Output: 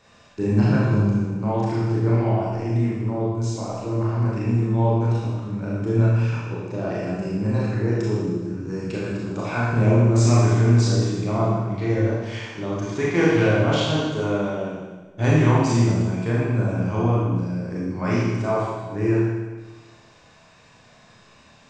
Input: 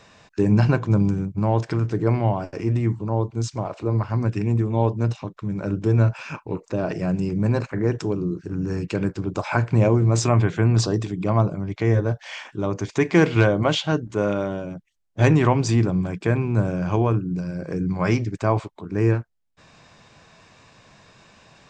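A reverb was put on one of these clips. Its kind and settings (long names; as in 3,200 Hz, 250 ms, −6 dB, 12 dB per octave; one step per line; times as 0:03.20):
four-comb reverb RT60 1.3 s, combs from 26 ms, DRR −6.5 dB
level −7.5 dB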